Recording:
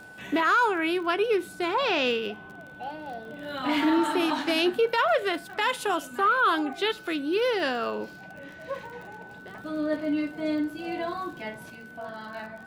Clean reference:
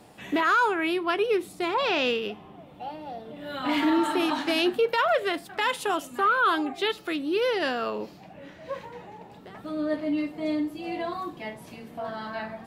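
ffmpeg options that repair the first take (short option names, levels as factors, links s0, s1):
-af "adeclick=t=4,bandreject=f=1500:w=30,asetnsamples=n=441:p=0,asendcmd='11.7 volume volume 4.5dB',volume=1"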